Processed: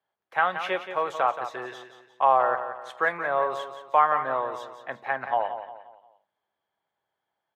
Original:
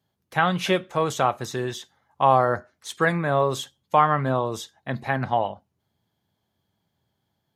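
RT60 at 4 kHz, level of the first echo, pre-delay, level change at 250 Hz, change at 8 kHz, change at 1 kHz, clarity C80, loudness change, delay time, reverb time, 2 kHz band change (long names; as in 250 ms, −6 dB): no reverb audible, −10.0 dB, no reverb audible, −15.0 dB, below −15 dB, −1.0 dB, no reverb audible, −2.5 dB, 176 ms, no reverb audible, −1.0 dB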